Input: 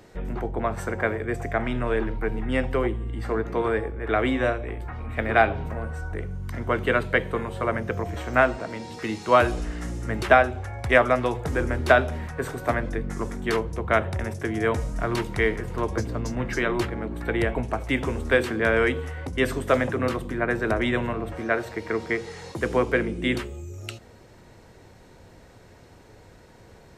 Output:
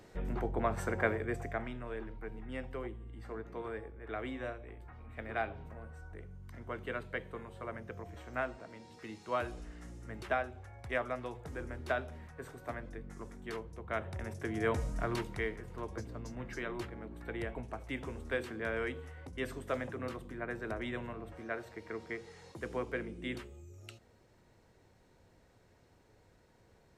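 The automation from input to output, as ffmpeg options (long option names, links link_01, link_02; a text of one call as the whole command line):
ffmpeg -i in.wav -af "volume=4dB,afade=type=out:start_time=1.08:duration=0.7:silence=0.281838,afade=type=in:start_time=13.85:duration=1.04:silence=0.316228,afade=type=out:start_time=14.89:duration=0.62:silence=0.398107" out.wav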